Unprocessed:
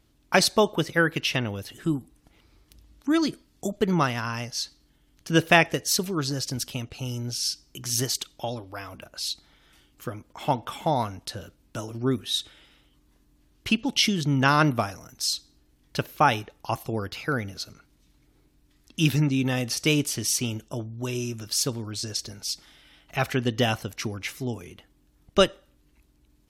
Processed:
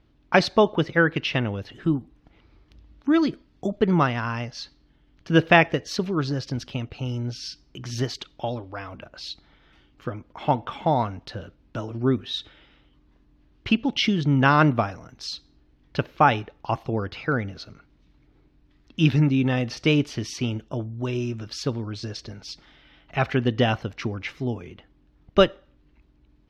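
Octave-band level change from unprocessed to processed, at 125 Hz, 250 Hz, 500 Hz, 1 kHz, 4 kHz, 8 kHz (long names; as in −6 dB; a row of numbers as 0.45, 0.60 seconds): +3.5, +3.0, +3.0, +2.5, −3.0, −13.5 decibels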